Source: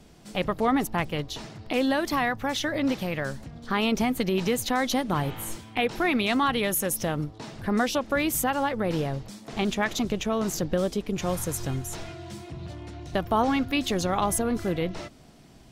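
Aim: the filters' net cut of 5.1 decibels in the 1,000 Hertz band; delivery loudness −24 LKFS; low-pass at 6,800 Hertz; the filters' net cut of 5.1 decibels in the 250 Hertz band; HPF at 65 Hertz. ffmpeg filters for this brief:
ffmpeg -i in.wav -af "highpass=65,lowpass=6800,equalizer=frequency=250:width_type=o:gain=-6,equalizer=frequency=1000:width_type=o:gain=-6.5,volume=6.5dB" out.wav

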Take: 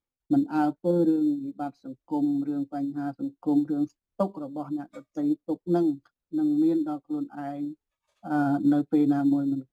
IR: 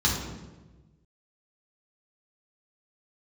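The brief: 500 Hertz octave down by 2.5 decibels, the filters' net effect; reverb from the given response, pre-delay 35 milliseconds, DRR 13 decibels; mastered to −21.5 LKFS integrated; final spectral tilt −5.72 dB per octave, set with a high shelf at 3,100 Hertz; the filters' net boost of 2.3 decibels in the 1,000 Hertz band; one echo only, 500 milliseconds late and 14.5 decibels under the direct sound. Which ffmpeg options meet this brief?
-filter_complex "[0:a]equalizer=frequency=500:width_type=o:gain=-6,equalizer=frequency=1000:width_type=o:gain=8,highshelf=frequency=3100:gain=-7.5,aecho=1:1:500:0.188,asplit=2[link_01][link_02];[1:a]atrim=start_sample=2205,adelay=35[link_03];[link_02][link_03]afir=irnorm=-1:irlink=0,volume=-25.5dB[link_04];[link_01][link_04]amix=inputs=2:normalize=0,volume=6dB"

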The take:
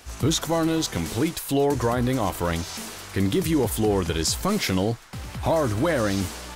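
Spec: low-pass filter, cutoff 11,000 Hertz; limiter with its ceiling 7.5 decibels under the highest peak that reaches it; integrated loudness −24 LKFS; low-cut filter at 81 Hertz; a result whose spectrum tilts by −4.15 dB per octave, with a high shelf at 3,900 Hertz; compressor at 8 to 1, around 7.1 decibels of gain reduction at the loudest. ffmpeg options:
ffmpeg -i in.wav -af "highpass=81,lowpass=11000,highshelf=frequency=3900:gain=4,acompressor=threshold=-25dB:ratio=8,volume=7.5dB,alimiter=limit=-14dB:level=0:latency=1" out.wav

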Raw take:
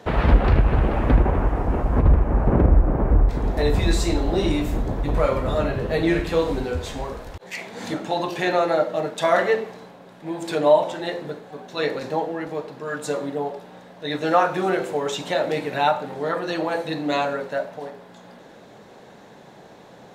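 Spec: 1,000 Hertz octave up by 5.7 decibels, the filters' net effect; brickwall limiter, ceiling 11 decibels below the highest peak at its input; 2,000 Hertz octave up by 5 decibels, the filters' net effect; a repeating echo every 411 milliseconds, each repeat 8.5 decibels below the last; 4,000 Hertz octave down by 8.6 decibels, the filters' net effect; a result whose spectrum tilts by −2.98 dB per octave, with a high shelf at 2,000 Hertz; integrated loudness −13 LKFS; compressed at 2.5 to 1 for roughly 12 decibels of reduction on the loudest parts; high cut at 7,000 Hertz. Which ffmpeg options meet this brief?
ffmpeg -i in.wav -af "lowpass=7000,equalizer=frequency=1000:width_type=o:gain=7.5,highshelf=frequency=2000:gain=-6,equalizer=frequency=2000:width_type=o:gain=8.5,equalizer=frequency=4000:width_type=o:gain=-8,acompressor=threshold=-28dB:ratio=2.5,alimiter=limit=-23.5dB:level=0:latency=1,aecho=1:1:411|822|1233|1644:0.376|0.143|0.0543|0.0206,volume=20dB" out.wav

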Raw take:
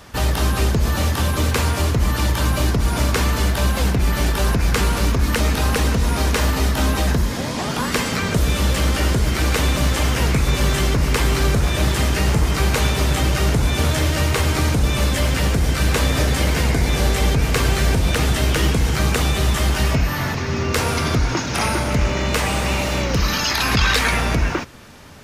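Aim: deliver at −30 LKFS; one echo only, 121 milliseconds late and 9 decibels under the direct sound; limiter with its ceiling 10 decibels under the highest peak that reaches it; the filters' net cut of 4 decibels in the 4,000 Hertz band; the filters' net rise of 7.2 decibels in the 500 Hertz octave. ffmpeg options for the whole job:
ffmpeg -i in.wav -af "equalizer=frequency=500:width_type=o:gain=9,equalizer=frequency=4000:width_type=o:gain=-5.5,alimiter=limit=-13dB:level=0:latency=1,aecho=1:1:121:0.355,volume=-8.5dB" out.wav

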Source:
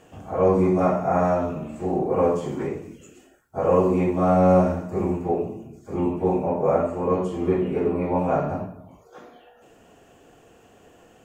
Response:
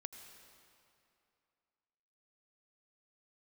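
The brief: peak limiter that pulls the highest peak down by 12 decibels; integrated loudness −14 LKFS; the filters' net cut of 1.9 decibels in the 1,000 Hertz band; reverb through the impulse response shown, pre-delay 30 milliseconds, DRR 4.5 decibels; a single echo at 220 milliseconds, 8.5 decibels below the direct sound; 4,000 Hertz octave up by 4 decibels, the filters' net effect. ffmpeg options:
-filter_complex "[0:a]equalizer=frequency=1000:width_type=o:gain=-3,equalizer=frequency=4000:width_type=o:gain=6,alimiter=limit=-18.5dB:level=0:latency=1,aecho=1:1:220:0.376,asplit=2[link_01][link_02];[1:a]atrim=start_sample=2205,adelay=30[link_03];[link_02][link_03]afir=irnorm=-1:irlink=0,volume=-0.5dB[link_04];[link_01][link_04]amix=inputs=2:normalize=0,volume=12dB"

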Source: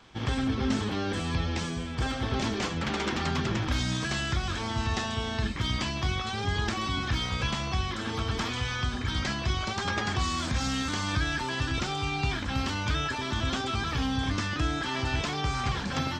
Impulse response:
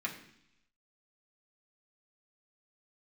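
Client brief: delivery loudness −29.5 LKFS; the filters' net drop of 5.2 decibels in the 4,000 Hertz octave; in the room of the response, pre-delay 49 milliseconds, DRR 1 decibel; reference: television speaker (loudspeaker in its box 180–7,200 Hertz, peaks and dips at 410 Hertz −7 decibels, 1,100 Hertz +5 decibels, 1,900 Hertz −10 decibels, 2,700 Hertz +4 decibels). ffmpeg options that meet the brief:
-filter_complex "[0:a]equalizer=frequency=4000:width_type=o:gain=-8,asplit=2[link_01][link_02];[1:a]atrim=start_sample=2205,adelay=49[link_03];[link_02][link_03]afir=irnorm=-1:irlink=0,volume=-4.5dB[link_04];[link_01][link_04]amix=inputs=2:normalize=0,highpass=frequency=180:width=0.5412,highpass=frequency=180:width=1.3066,equalizer=frequency=410:width_type=q:width=4:gain=-7,equalizer=frequency=1100:width_type=q:width=4:gain=5,equalizer=frequency=1900:width_type=q:width=4:gain=-10,equalizer=frequency=2700:width_type=q:width=4:gain=4,lowpass=frequency=7200:width=0.5412,lowpass=frequency=7200:width=1.3066,volume=1dB"

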